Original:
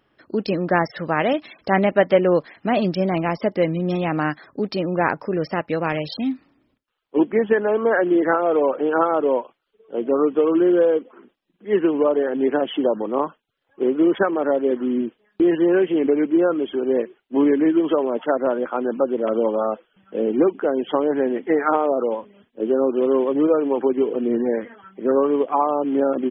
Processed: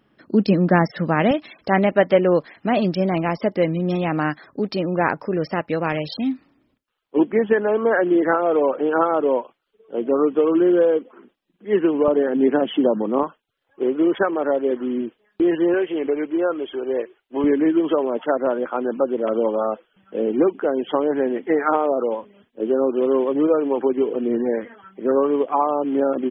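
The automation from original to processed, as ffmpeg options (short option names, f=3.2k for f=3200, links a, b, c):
-af "asetnsamples=n=441:p=0,asendcmd='1.31 equalizer g 1;12.08 equalizer g 7;13.23 equalizer g -3.5;15.74 equalizer g -13;17.44 equalizer g -1',equalizer=f=200:t=o:w=1.1:g=9.5"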